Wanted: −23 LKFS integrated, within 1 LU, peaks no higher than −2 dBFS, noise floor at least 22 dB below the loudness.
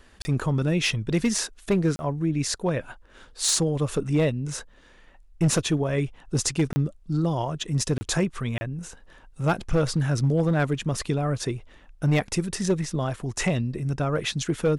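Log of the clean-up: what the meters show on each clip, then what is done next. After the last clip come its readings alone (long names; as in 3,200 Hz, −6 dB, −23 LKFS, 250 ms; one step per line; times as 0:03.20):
share of clipped samples 0.8%; peaks flattened at −15.5 dBFS; number of dropouts 5; longest dropout 30 ms; integrated loudness −25.5 LKFS; sample peak −15.5 dBFS; target loudness −23.0 LKFS
→ clipped peaks rebuilt −15.5 dBFS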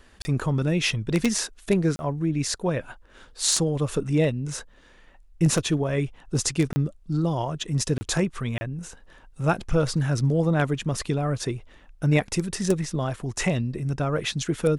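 share of clipped samples 0.0%; number of dropouts 5; longest dropout 30 ms
→ repair the gap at 0:00.22/0:01.96/0:06.73/0:07.98/0:08.58, 30 ms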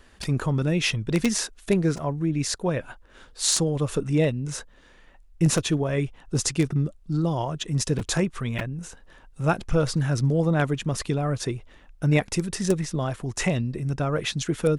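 number of dropouts 0; integrated loudness −25.5 LKFS; sample peak −6.5 dBFS; target loudness −23.0 LKFS
→ level +2.5 dB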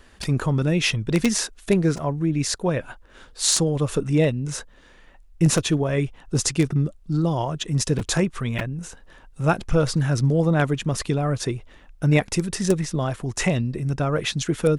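integrated loudness −23.0 LKFS; sample peak −4.0 dBFS; background noise floor −51 dBFS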